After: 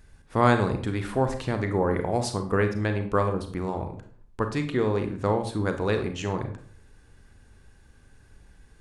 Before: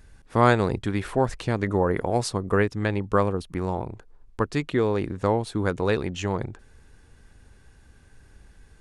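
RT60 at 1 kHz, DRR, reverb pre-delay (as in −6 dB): 0.50 s, 6.5 dB, 31 ms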